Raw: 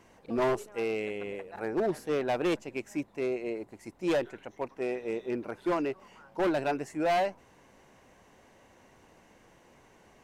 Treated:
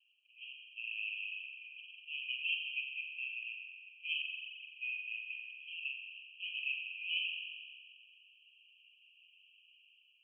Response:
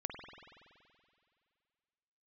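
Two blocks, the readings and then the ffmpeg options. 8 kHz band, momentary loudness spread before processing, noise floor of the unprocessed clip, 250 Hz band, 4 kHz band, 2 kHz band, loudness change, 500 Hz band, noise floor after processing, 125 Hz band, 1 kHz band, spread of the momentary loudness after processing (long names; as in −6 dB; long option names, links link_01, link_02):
below −25 dB, 11 LU, −60 dBFS, below −40 dB, +6.0 dB, +2.0 dB, −7.5 dB, below −40 dB, −68 dBFS, below −40 dB, below −40 dB, 14 LU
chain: -filter_complex "[0:a]dynaudnorm=framelen=700:gausssize=3:maxgain=8dB,asuperpass=centerf=2800:order=20:qfactor=3.6[link_01];[1:a]atrim=start_sample=2205,asetrate=52920,aresample=44100[link_02];[link_01][link_02]afir=irnorm=-1:irlink=0,volume=3.5dB"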